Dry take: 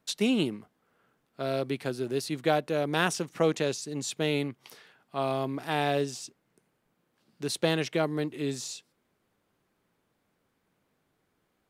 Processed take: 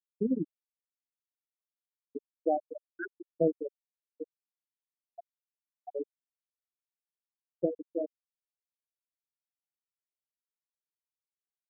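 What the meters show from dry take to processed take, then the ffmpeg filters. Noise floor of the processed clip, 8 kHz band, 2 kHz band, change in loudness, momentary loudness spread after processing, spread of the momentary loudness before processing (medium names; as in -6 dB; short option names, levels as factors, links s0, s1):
under -85 dBFS, under -40 dB, -16.0 dB, -5.0 dB, 17 LU, 11 LU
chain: -af "bandreject=f=50:t=h:w=6,bandreject=f=100:t=h:w=6,bandreject=f=150:t=h:w=6,bandreject=f=200:t=h:w=6,bandreject=f=250:t=h:w=6,aeval=exprs='val(0)*gte(abs(val(0)),0.0596)':c=same,afftfilt=real='re*gte(hypot(re,im),0.251)':imag='im*gte(hypot(re,im),0.251)':win_size=1024:overlap=0.75"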